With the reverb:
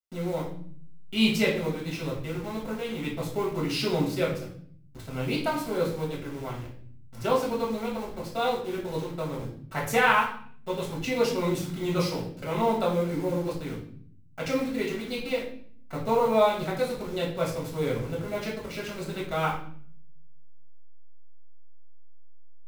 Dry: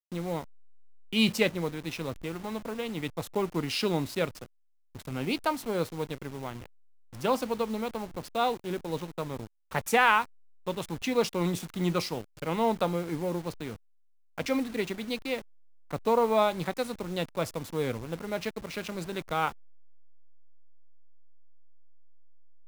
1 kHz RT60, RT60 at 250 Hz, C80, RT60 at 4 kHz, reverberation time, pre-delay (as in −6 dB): 0.50 s, 1.0 s, 10.0 dB, 0.50 s, 0.55 s, 4 ms